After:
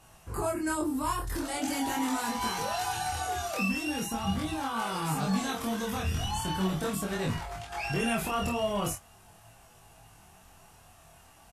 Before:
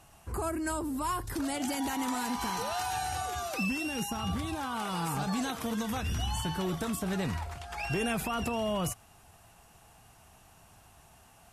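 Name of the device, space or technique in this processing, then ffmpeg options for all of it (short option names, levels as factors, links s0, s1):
double-tracked vocal: -filter_complex "[0:a]asplit=2[s0][s1];[s1]adelay=20,volume=0.251[s2];[s0][s2]amix=inputs=2:normalize=0,flanger=delay=18:depth=6.4:speed=0.41,asplit=2[s3][s4];[s4]adelay=26,volume=0.708[s5];[s3][s5]amix=inputs=2:normalize=0,volume=1.41"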